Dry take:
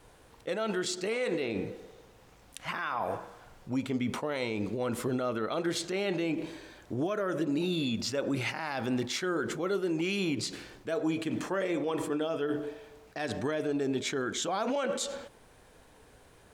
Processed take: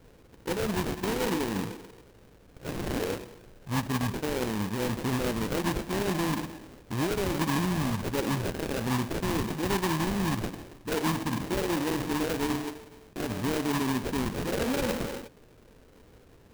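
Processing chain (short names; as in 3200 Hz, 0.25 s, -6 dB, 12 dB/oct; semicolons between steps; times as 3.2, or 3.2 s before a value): sample-rate reducer 1400 Hz, jitter 20%; formant shift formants -6 st; gain +2.5 dB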